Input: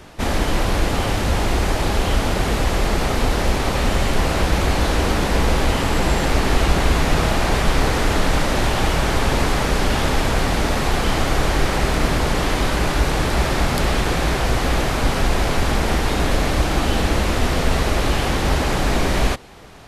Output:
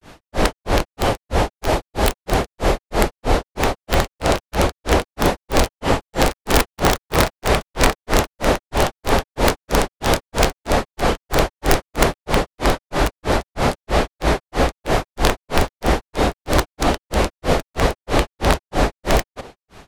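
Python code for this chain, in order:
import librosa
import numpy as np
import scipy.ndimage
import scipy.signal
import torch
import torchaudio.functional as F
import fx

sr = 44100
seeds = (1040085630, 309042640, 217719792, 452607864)

y = fx.dynamic_eq(x, sr, hz=570.0, q=0.75, threshold_db=-36.0, ratio=4.0, max_db=7)
y = (np.mod(10.0 ** (6.0 / 20.0) * y + 1.0, 2.0) - 1.0) / 10.0 ** (6.0 / 20.0)
y = fx.granulator(y, sr, seeds[0], grain_ms=209.0, per_s=3.1, spray_ms=100.0, spread_st=0)
y = F.gain(torch.from_numpy(y), 2.5).numpy()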